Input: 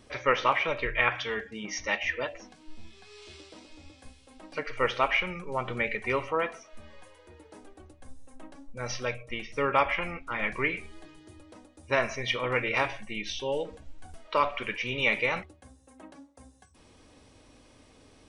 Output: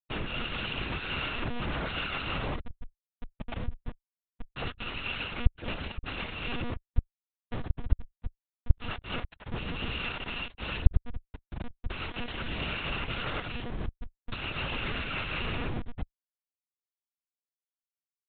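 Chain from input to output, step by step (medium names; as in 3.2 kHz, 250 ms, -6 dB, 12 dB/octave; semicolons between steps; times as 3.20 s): bit-reversed sample order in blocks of 128 samples; spring tank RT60 1.2 s, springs 39/49/59 ms, chirp 80 ms, DRR -5 dB; rotary cabinet horn 0.75 Hz; in parallel at -1 dB: compression 20:1, threshold -39 dBFS, peak gain reduction 20 dB; on the sum: Schmitt trigger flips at -37 dBFS; monotone LPC vocoder at 8 kHz 240 Hz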